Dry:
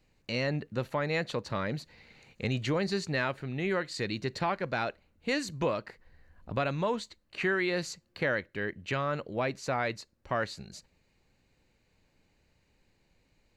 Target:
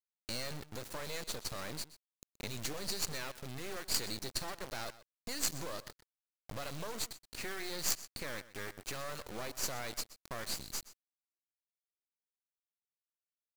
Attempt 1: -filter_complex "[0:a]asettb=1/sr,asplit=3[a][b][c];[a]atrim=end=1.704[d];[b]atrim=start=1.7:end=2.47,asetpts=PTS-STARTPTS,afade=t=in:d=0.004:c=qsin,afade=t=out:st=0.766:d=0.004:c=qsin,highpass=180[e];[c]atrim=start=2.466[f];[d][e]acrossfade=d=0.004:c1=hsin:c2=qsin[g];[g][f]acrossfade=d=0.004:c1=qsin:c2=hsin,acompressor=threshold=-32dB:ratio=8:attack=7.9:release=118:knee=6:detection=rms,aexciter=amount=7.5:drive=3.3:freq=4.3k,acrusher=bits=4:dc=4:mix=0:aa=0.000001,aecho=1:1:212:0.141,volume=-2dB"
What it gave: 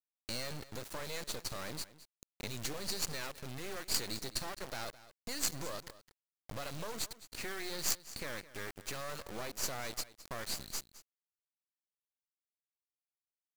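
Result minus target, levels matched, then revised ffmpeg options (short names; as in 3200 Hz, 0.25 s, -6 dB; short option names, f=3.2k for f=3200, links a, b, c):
echo 87 ms late
-filter_complex "[0:a]asettb=1/sr,asplit=3[a][b][c];[a]atrim=end=1.704[d];[b]atrim=start=1.7:end=2.47,asetpts=PTS-STARTPTS,afade=t=in:d=0.004:c=qsin,afade=t=out:st=0.766:d=0.004:c=qsin,highpass=180[e];[c]atrim=start=2.466[f];[d][e]acrossfade=d=0.004:c1=hsin:c2=qsin[g];[g][f]acrossfade=d=0.004:c1=qsin:c2=hsin,acompressor=threshold=-32dB:ratio=8:attack=7.9:release=118:knee=6:detection=rms,aexciter=amount=7.5:drive=3.3:freq=4.3k,acrusher=bits=4:dc=4:mix=0:aa=0.000001,aecho=1:1:125:0.141,volume=-2dB"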